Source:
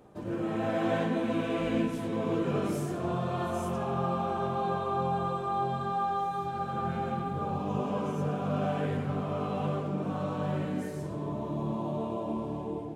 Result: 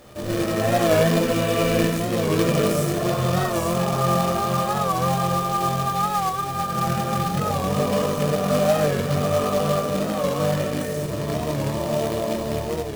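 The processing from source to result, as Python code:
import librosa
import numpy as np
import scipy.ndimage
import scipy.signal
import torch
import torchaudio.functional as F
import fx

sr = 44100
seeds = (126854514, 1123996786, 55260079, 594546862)

y = fx.high_shelf(x, sr, hz=4000.0, db=5.5)
y = fx.room_shoebox(y, sr, seeds[0], volume_m3=410.0, walls='furnished', distance_m=2.5)
y = fx.quant_companded(y, sr, bits=4)
y = y + 0.35 * np.pad(y, (int(1.7 * sr / 1000.0), 0))[:len(y)]
y = fx.record_warp(y, sr, rpm=45.0, depth_cents=100.0)
y = y * librosa.db_to_amplitude(4.0)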